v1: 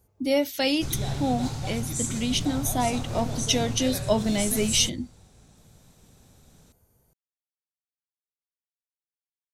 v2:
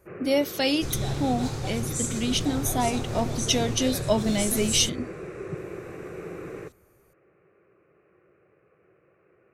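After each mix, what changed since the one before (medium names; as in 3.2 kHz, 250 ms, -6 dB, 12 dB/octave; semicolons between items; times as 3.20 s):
first sound: unmuted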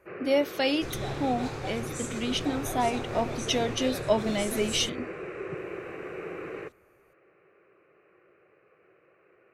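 first sound: remove distance through air 460 m; master: add tone controls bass -8 dB, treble -10 dB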